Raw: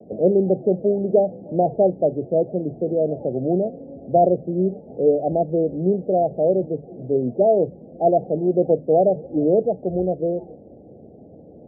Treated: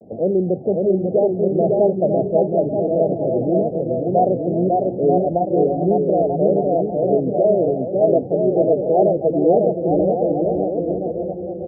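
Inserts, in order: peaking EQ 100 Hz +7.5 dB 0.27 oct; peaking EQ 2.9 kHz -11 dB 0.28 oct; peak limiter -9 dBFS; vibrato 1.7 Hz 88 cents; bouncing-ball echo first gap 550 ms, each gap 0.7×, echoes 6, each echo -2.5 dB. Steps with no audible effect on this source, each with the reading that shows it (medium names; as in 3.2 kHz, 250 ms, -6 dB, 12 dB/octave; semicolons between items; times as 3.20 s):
peaking EQ 2.9 kHz: input has nothing above 850 Hz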